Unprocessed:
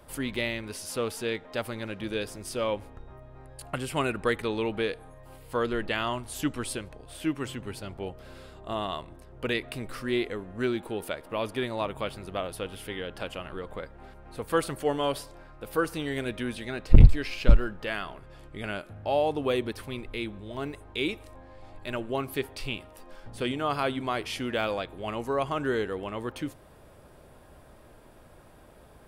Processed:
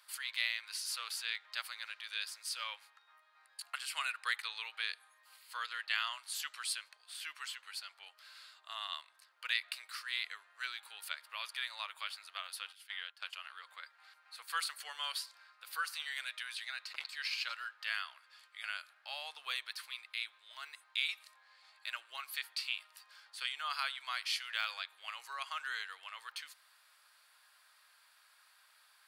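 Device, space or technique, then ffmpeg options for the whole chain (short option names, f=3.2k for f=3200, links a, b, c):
headphones lying on a table: -filter_complex "[0:a]highpass=f=1.3k:w=0.5412,highpass=f=1.3k:w=1.3066,equalizer=f=4.4k:t=o:w=0.36:g=10,asplit=3[a][b][c];[a]afade=t=out:st=12.71:d=0.02[d];[b]agate=range=-14dB:threshold=-41dB:ratio=16:detection=peak,afade=t=in:st=12.71:d=0.02,afade=t=out:st=13.42:d=0.02[e];[c]afade=t=in:st=13.42:d=0.02[f];[d][e][f]amix=inputs=3:normalize=0,volume=-3dB"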